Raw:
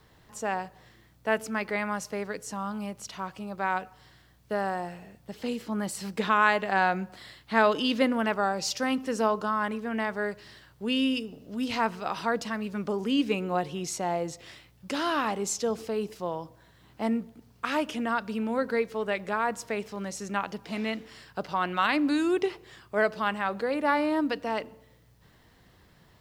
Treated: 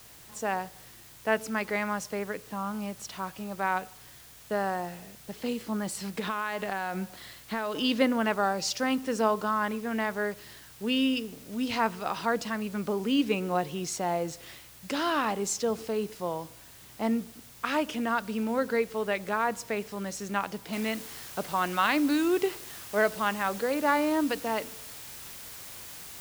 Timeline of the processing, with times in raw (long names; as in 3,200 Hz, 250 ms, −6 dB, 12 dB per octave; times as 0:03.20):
0:02.19–0:02.75: inverse Chebyshev low-pass filter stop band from 7,800 Hz, stop band 50 dB
0:05.76–0:07.82: downward compressor, threshold −27 dBFS
0:20.73: noise floor change −52 dB −44 dB